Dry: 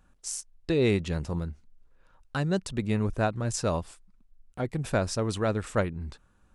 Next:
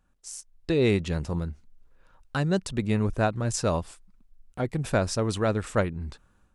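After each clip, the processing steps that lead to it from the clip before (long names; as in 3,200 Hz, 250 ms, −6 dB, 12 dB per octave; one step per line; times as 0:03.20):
automatic gain control gain up to 9.5 dB
level −7 dB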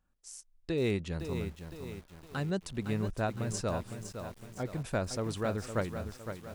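feedback echo at a low word length 510 ms, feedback 55%, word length 7 bits, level −8 dB
level −8 dB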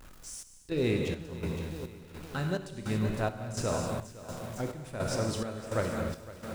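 converter with a step at zero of −46 dBFS
reverb whose tail is shaped and stops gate 310 ms flat, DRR 1 dB
square-wave tremolo 1.4 Hz, depth 65%, duty 60%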